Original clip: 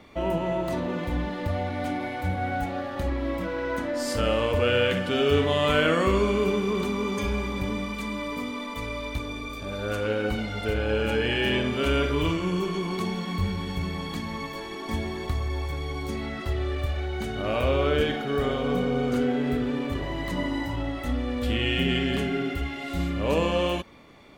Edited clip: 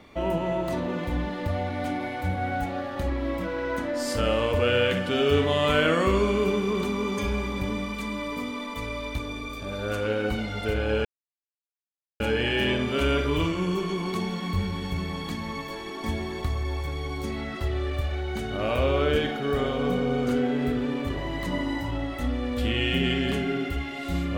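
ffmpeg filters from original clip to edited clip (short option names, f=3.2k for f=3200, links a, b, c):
-filter_complex "[0:a]asplit=2[a][b];[a]atrim=end=11.05,asetpts=PTS-STARTPTS,afade=t=out:st=11.046:d=0.004:c=hsin,apad=pad_dur=1.15[c];[b]atrim=start=11.05,asetpts=PTS-STARTPTS,afade=t=in:d=0.004:c=hsin[d];[c][d]concat=n=2:v=0:a=1"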